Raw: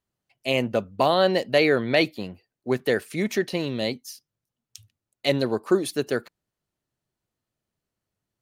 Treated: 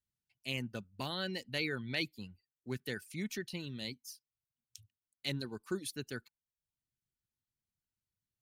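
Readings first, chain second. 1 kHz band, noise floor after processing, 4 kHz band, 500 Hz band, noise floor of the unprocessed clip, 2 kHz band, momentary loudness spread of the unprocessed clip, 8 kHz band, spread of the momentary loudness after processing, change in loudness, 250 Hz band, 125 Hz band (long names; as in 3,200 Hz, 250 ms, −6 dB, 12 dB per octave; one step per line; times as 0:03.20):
−21.5 dB, below −85 dBFS, −10.5 dB, −21.5 dB, below −85 dBFS, −12.5 dB, 13 LU, −9.0 dB, 17 LU, −15.5 dB, −15.0 dB, −10.5 dB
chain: reverb reduction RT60 0.54 s
guitar amp tone stack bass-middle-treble 6-0-2
hollow resonant body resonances 860/1,500 Hz, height 7 dB
level +6 dB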